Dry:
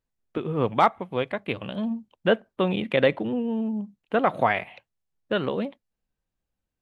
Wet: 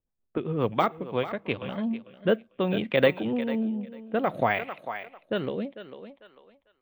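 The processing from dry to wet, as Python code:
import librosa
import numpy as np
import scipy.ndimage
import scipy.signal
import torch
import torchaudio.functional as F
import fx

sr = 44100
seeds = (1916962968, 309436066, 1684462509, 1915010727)

p1 = (np.kron(x[::2], np.eye(2)[0]) * 2)[:len(x)]
p2 = fx.env_lowpass(p1, sr, base_hz=1100.0, full_db=-16.5)
p3 = p2 + fx.echo_thinned(p2, sr, ms=447, feedback_pct=23, hz=350.0, wet_db=-11, dry=0)
y = fx.rotary_switch(p3, sr, hz=7.5, then_hz=0.6, switch_at_s=0.64)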